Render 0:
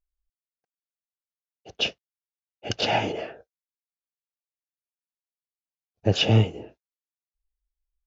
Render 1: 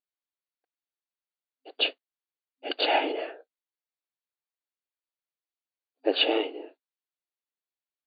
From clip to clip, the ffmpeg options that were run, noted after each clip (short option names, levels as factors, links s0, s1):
-af "afftfilt=real='re*between(b*sr/4096,260,4700)':imag='im*between(b*sr/4096,260,4700)':win_size=4096:overlap=0.75"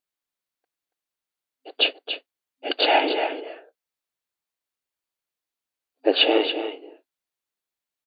-af "aecho=1:1:281:0.335,volume=1.88"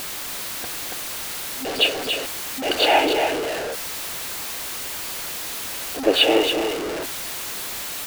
-af "aeval=exprs='val(0)+0.5*0.0794*sgn(val(0))':c=same"